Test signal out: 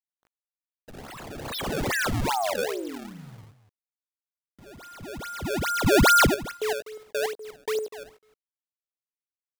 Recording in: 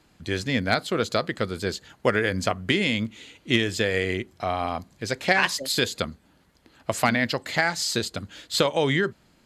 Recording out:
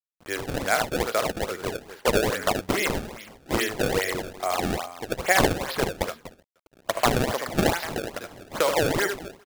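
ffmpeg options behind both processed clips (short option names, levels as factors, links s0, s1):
-filter_complex "[0:a]acrossover=split=390 3100:gain=0.1 1 0.158[s0][s1][s2];[s0][s1][s2]amix=inputs=3:normalize=0,asplit=2[s3][s4];[s4]adelay=303.2,volume=0.0501,highshelf=f=4000:g=-6.82[s5];[s3][s5]amix=inputs=2:normalize=0,acrusher=bits=8:mix=0:aa=0.000001,asplit=2[s6][s7];[s7]aecho=0:1:55|76|93|247:0.126|0.531|0.158|0.224[s8];[s6][s8]amix=inputs=2:normalize=0,acrusher=samples=25:mix=1:aa=0.000001:lfo=1:lforange=40:lforate=2.4,volume=1.19"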